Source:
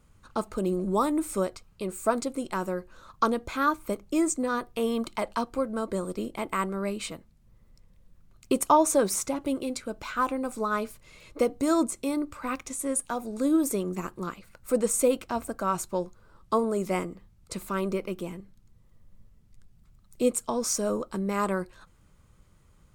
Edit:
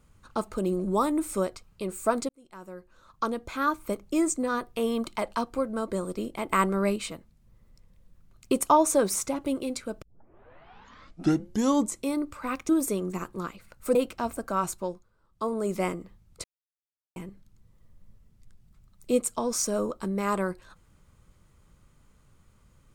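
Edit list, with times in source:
2.29–3.91 fade in
6.5–6.96 gain +5 dB
10.02 tape start 2.00 s
12.69–13.52 cut
14.78–15.06 cut
15.82–16.8 dip -12.5 dB, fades 0.39 s
17.55–18.27 mute

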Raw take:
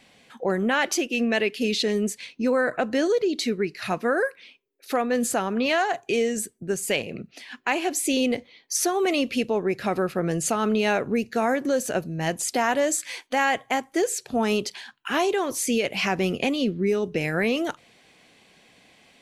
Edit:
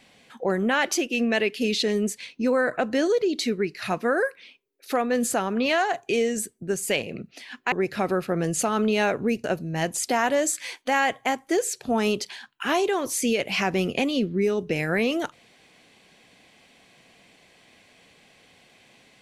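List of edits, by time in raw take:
7.72–9.59 cut
11.31–11.89 cut

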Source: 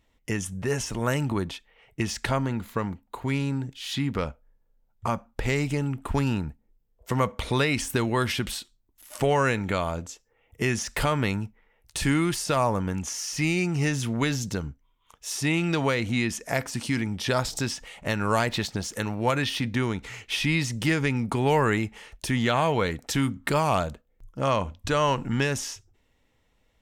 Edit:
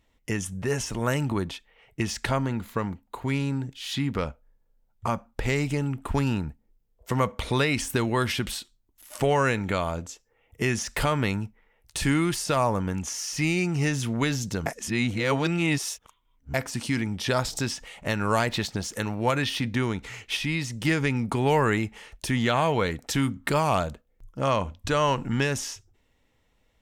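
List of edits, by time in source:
14.66–16.54 reverse
20.37–20.85 gain -3.5 dB

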